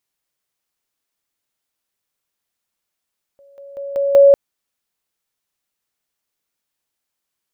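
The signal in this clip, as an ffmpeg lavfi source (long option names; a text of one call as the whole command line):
ffmpeg -f lavfi -i "aevalsrc='pow(10,(-45+10*floor(t/0.19))/20)*sin(2*PI*559*t)':duration=0.95:sample_rate=44100" out.wav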